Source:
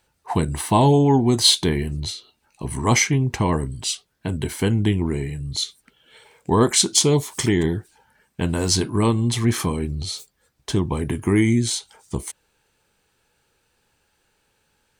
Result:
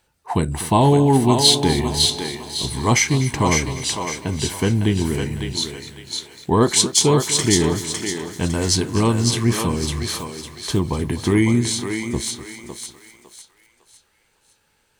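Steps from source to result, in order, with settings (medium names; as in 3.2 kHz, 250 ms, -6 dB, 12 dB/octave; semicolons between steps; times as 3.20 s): thinning echo 555 ms, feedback 37%, high-pass 530 Hz, level -3.5 dB; bit-crushed delay 248 ms, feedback 55%, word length 7-bit, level -15 dB; trim +1 dB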